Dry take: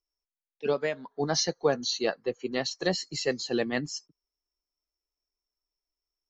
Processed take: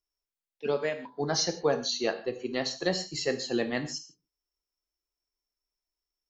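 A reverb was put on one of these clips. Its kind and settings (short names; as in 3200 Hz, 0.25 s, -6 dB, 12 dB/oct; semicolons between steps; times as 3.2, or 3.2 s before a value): non-linear reverb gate 0.18 s falling, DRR 7 dB; gain -1.5 dB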